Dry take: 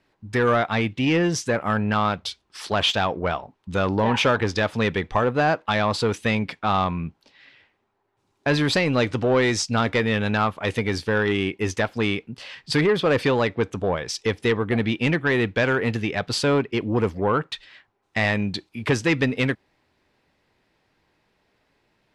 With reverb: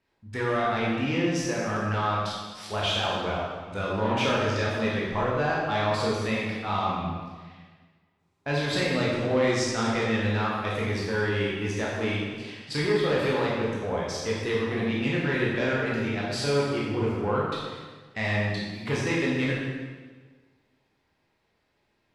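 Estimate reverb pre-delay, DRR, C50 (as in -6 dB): 14 ms, -5.5 dB, -0.5 dB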